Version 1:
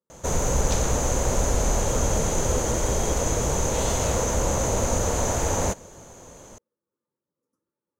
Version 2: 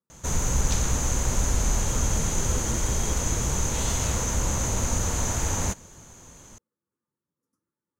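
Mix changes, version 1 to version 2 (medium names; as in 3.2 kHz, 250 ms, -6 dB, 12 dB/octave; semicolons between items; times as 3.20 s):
speech +3.5 dB; master: add peaking EQ 550 Hz -11 dB 1.4 oct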